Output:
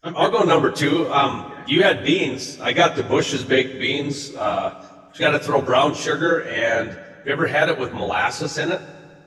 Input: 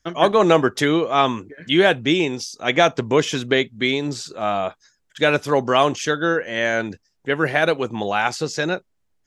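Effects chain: phase scrambler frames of 50 ms; bell 220 Hz -10 dB 0.23 oct; reverb RT60 2.0 s, pre-delay 3 ms, DRR 13.5 dB

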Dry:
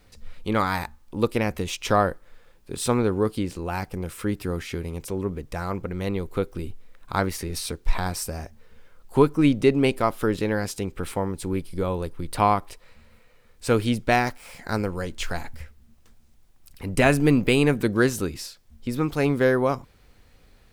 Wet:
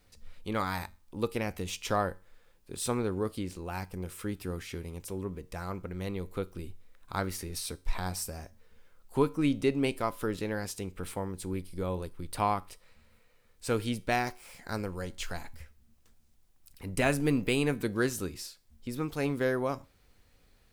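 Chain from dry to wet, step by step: high shelf 4500 Hz +5 dB; resonator 92 Hz, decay 0.34 s, harmonics all, mix 40%; gain -5.5 dB

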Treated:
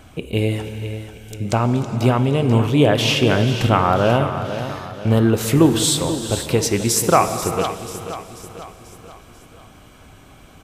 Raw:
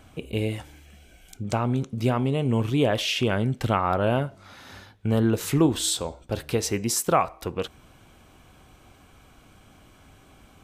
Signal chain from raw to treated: feedback echo 0.488 s, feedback 49%, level -11 dB; non-linear reverb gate 0.46 s flat, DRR 9.5 dB; gain +6.5 dB

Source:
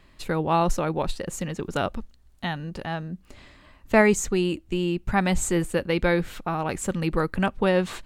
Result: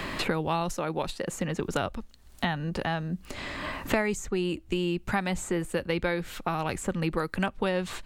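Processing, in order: low shelf 410 Hz -3.5 dB; three-band squash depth 100%; gain -3.5 dB

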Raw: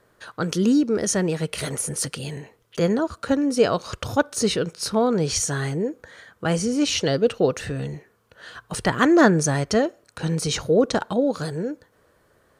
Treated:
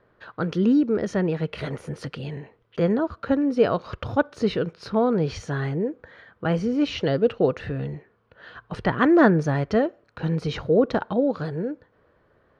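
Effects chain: air absorption 320 m

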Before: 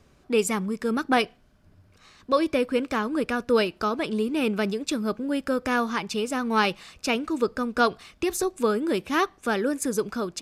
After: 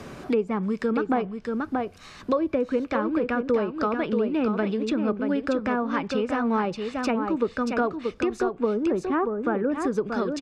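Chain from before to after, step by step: 8.52–9.72 LPF 1400 Hz 12 dB/oct; treble ducked by the level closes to 940 Hz, closed at -19.5 dBFS; echo 0.631 s -7 dB; three-band squash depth 70%

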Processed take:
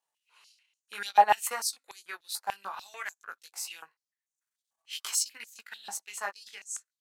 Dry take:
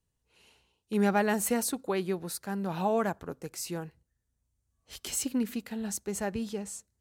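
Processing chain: chorus 0.56 Hz, delay 18 ms, depth 2.4 ms; transient shaper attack +3 dB, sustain -10 dB; stepped high-pass 6.8 Hz 830–6600 Hz; gain +2.5 dB

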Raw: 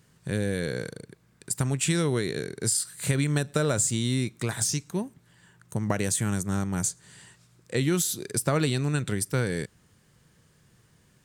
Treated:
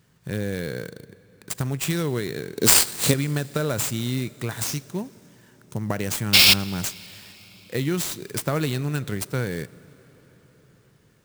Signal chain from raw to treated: 2.56–3.14 ten-band EQ 250 Hz +10 dB, 500 Hz +9 dB, 4000 Hz +11 dB, 8000 Hz +11 dB; 6.33–6.54 painted sound noise 2100–5600 Hz -13 dBFS; on a send at -20 dB: reverb RT60 5.4 s, pre-delay 43 ms; on the sum: clock jitter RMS 0.021 ms

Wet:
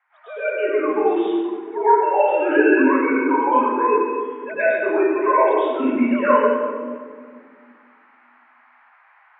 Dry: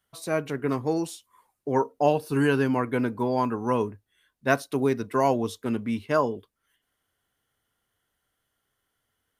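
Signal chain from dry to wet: sine-wave speech; tilt +2.5 dB/oct; in parallel at +3 dB: compressor, threshold -35 dBFS, peak gain reduction 17 dB; on the sum: low-pass opened by the level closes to 1600 Hz, open at -22 dBFS; band noise 780–2100 Hz -60 dBFS; reverb RT60 1.8 s, pre-delay 98 ms, DRR -17.5 dB; gain -11.5 dB

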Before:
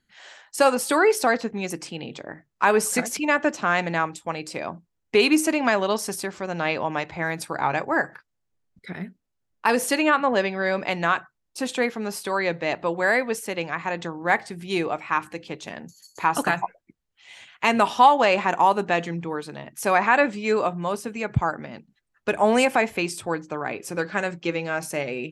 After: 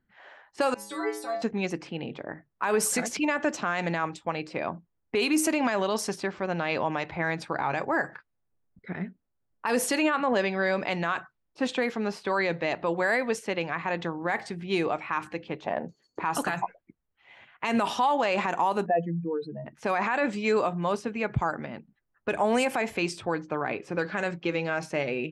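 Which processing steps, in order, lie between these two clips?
18.86–19.66 spectral contrast raised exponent 2.9; low-pass opened by the level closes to 1400 Hz, open at -18 dBFS; 0.74–1.42 metallic resonator 100 Hz, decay 0.75 s, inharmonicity 0.008; 15.62–16.22 bell 840 Hz -> 290 Hz +13 dB 1.2 oct; limiter -16 dBFS, peak gain reduction 11 dB

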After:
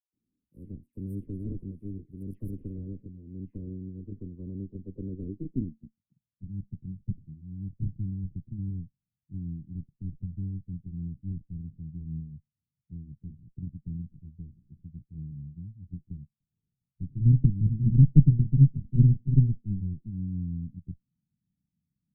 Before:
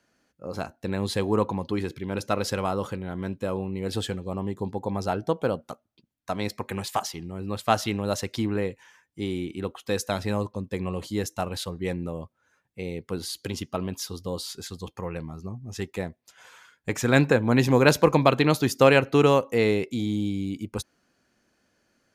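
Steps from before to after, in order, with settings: gliding pitch shift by -2.5 st starting unshifted; added harmonics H 4 -7 dB, 7 -15 dB, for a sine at -4 dBFS; low-pass sweep 8400 Hz -> 150 Hz, 2.37–6.06; inverse Chebyshev band-stop 740–7300 Hz, stop band 50 dB; dispersion lows, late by 0.13 s, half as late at 1900 Hz; gain +3 dB

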